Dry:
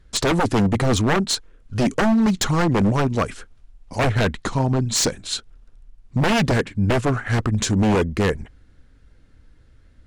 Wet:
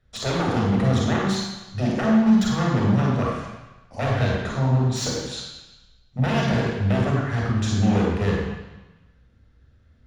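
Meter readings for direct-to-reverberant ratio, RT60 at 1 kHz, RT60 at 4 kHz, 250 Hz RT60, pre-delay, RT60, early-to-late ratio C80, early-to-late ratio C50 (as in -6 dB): -3.0 dB, 1.2 s, 1.2 s, 1.0 s, 25 ms, 1.1 s, 2.0 dB, -1.0 dB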